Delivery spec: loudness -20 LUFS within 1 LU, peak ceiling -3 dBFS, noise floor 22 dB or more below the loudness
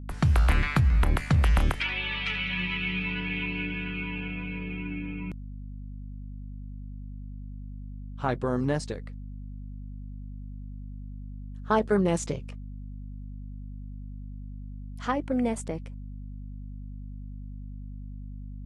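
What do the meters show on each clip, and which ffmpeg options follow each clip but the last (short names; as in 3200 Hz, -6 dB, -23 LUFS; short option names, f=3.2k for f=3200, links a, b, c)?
hum 50 Hz; harmonics up to 250 Hz; hum level -36 dBFS; loudness -28.0 LUFS; peak -10.0 dBFS; loudness target -20.0 LUFS
-> -af "bandreject=f=50:t=h:w=4,bandreject=f=100:t=h:w=4,bandreject=f=150:t=h:w=4,bandreject=f=200:t=h:w=4,bandreject=f=250:t=h:w=4"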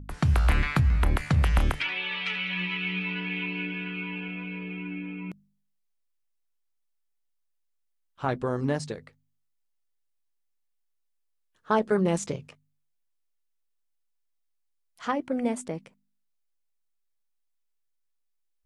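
hum none; loudness -28.5 LUFS; peak -10.5 dBFS; loudness target -20.0 LUFS
-> -af "volume=8.5dB,alimiter=limit=-3dB:level=0:latency=1"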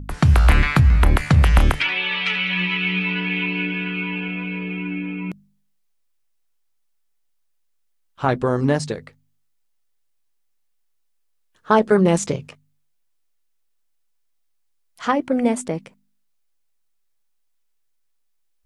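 loudness -20.0 LUFS; peak -3.0 dBFS; noise floor -66 dBFS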